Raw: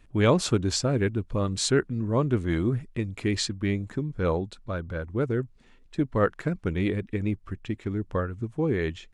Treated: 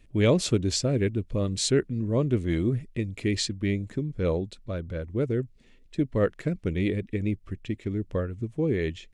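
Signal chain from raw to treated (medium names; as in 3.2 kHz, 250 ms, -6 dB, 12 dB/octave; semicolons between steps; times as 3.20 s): high-order bell 1.1 kHz -8.5 dB 1.3 oct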